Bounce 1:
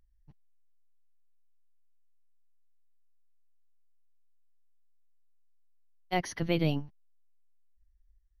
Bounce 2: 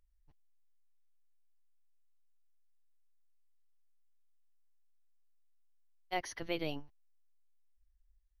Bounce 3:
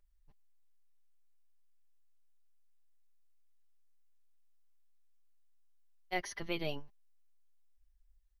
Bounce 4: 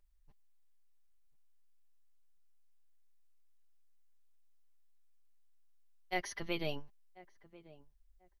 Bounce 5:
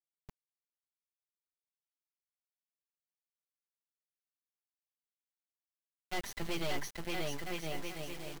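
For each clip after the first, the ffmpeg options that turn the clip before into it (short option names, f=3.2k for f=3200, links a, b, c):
-af "equalizer=f=170:t=o:w=1.2:g=-14,volume=-4.5dB"
-af "aecho=1:1:5:0.48"
-filter_complex "[0:a]asplit=2[a][b];[b]adelay=1040,lowpass=f=1k:p=1,volume=-18dB,asplit=2[c][d];[d]adelay=1040,lowpass=f=1k:p=1,volume=0.27[e];[a][c][e]amix=inputs=3:normalize=0"
-af "aecho=1:1:580|1015|1341|1586|1769:0.631|0.398|0.251|0.158|0.1,volume=34.5dB,asoftclip=hard,volume=-34.5dB,acrusher=bits=6:dc=4:mix=0:aa=0.000001,volume=6dB"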